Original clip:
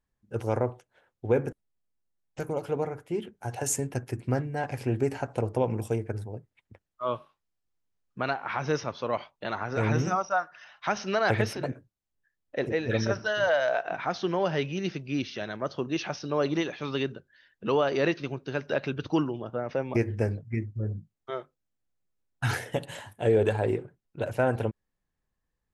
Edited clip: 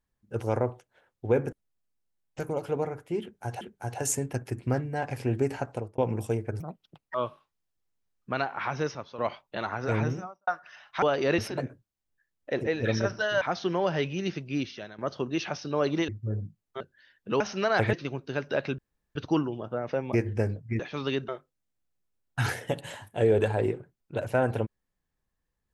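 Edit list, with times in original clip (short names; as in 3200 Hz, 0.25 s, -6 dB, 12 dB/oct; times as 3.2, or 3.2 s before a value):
3.22–3.61 loop, 2 plays
5.25–5.59 fade out
6.21–7.03 speed 151%
8.55–9.07 fade out linear, to -11 dB
9.74–10.36 studio fade out
10.91–11.44 swap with 17.76–18.12
13.47–14 cut
15.15–15.57 fade out, to -14 dB
16.67–17.16 swap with 20.61–21.33
18.97 insert room tone 0.37 s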